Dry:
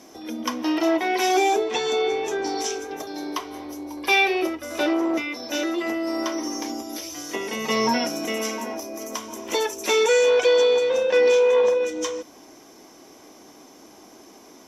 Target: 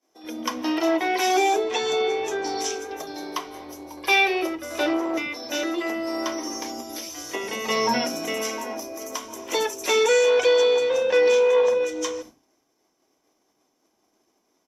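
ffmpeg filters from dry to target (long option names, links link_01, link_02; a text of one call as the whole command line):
ffmpeg -i in.wav -filter_complex "[0:a]agate=range=-33dB:threshold=-34dB:ratio=3:detection=peak,acrossover=split=240[link_01][link_02];[link_01]adelay=80[link_03];[link_03][link_02]amix=inputs=2:normalize=0" out.wav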